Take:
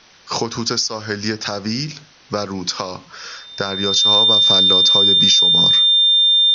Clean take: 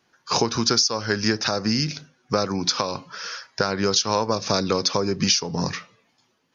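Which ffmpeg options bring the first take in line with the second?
ffmpeg -i in.wav -af "bandreject=frequency=3600:width=30,agate=range=-21dB:threshold=-34dB" out.wav

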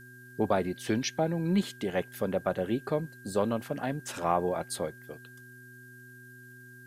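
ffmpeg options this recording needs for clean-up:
ffmpeg -i in.wav -af "adeclick=threshold=4,bandreject=frequency=124:width_type=h:width=4,bandreject=frequency=248:width_type=h:width=4,bandreject=frequency=372:width_type=h:width=4,bandreject=frequency=1600:width=30,agate=range=-21dB:threshold=-42dB" out.wav

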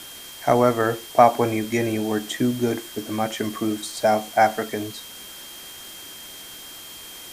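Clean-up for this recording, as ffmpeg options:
ffmpeg -i in.wav -af "adeclick=threshold=4,bandreject=frequency=3200:width=30,afwtdn=0.01" out.wav

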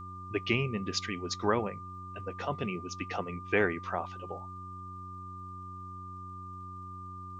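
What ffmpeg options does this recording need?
ffmpeg -i in.wav -af "adeclick=threshold=4,bandreject=frequency=92.7:width_type=h:width=4,bandreject=frequency=185.4:width_type=h:width=4,bandreject=frequency=278.1:width_type=h:width=4,bandreject=frequency=370.8:width_type=h:width=4,bandreject=frequency=1200:width=30,agate=range=-21dB:threshold=-36dB" out.wav

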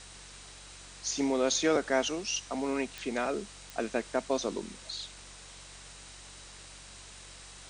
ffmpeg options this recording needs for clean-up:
ffmpeg -i in.wav -af "adeclick=threshold=4,bandreject=frequency=46.9:width_type=h:width=4,bandreject=frequency=93.8:width_type=h:width=4,bandreject=frequency=140.7:width_type=h:width=4,bandreject=frequency=187.6:width_type=h:width=4,bandreject=frequency=3900:width=30,afwtdn=0.0045" out.wav

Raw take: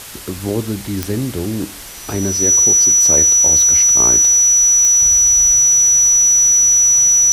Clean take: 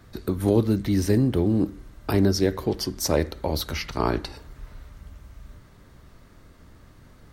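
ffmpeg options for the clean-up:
ffmpeg -i in.wav -af "adeclick=threshold=4,bandreject=frequency=5900:width=30,afwtdn=0.025,asetnsamples=nb_out_samples=441:pad=0,asendcmd='5.02 volume volume -10.5dB',volume=0dB" out.wav

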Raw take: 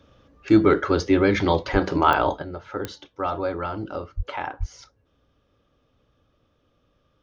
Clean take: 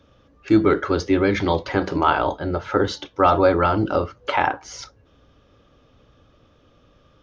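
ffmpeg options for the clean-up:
ffmpeg -i in.wav -filter_complex "[0:a]adeclick=threshold=4,asplit=3[link_01][link_02][link_03];[link_01]afade=type=out:start_time=1.72:duration=0.02[link_04];[link_02]highpass=frequency=140:width=0.5412,highpass=frequency=140:width=1.3066,afade=type=in:start_time=1.72:duration=0.02,afade=type=out:start_time=1.84:duration=0.02[link_05];[link_03]afade=type=in:start_time=1.84:duration=0.02[link_06];[link_04][link_05][link_06]amix=inputs=3:normalize=0,asplit=3[link_07][link_08][link_09];[link_07]afade=type=out:start_time=4.16:duration=0.02[link_10];[link_08]highpass=frequency=140:width=0.5412,highpass=frequency=140:width=1.3066,afade=type=in:start_time=4.16:duration=0.02,afade=type=out:start_time=4.28:duration=0.02[link_11];[link_09]afade=type=in:start_time=4.28:duration=0.02[link_12];[link_10][link_11][link_12]amix=inputs=3:normalize=0,asplit=3[link_13][link_14][link_15];[link_13]afade=type=out:start_time=4.59:duration=0.02[link_16];[link_14]highpass=frequency=140:width=0.5412,highpass=frequency=140:width=1.3066,afade=type=in:start_time=4.59:duration=0.02,afade=type=out:start_time=4.71:duration=0.02[link_17];[link_15]afade=type=in:start_time=4.71:duration=0.02[link_18];[link_16][link_17][link_18]amix=inputs=3:normalize=0,asetnsamples=nb_out_samples=441:pad=0,asendcmd='2.42 volume volume 10.5dB',volume=0dB" out.wav

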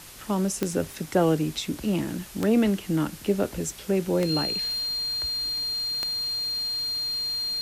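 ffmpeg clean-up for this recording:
ffmpeg -i in.wav -af "adeclick=threshold=4,bandreject=frequency=4200:width=30,afwtdn=0.0063" out.wav

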